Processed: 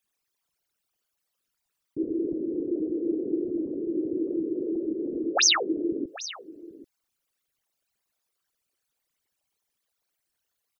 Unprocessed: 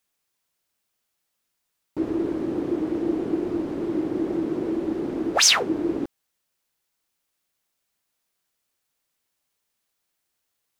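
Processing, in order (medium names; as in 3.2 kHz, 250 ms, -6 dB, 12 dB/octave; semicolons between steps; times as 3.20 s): resonances exaggerated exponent 3; delay 786 ms -16.5 dB; trim -3 dB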